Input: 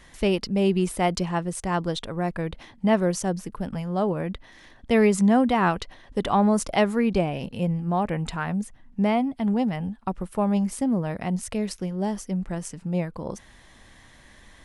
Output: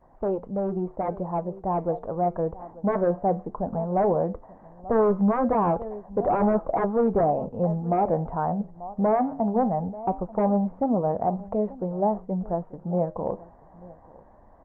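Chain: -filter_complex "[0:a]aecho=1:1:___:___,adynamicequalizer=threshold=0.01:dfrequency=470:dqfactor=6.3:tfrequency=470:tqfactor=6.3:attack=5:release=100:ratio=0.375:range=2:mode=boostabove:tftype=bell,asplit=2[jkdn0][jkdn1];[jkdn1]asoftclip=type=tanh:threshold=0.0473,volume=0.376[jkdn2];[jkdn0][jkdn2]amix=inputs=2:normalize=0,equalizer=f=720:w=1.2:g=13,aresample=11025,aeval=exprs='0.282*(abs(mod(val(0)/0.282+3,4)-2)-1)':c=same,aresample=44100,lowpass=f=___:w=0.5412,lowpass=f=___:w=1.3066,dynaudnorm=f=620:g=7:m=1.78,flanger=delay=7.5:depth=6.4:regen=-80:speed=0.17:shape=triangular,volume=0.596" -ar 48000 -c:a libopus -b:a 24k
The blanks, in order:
887, 0.0891, 1100, 1100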